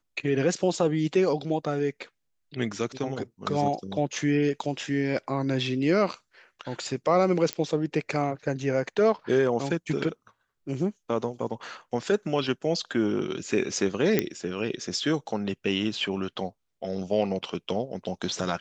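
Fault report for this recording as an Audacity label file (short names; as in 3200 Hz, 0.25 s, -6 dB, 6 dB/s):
7.530000	7.530000	pop -13 dBFS
14.190000	14.190000	pop -8 dBFS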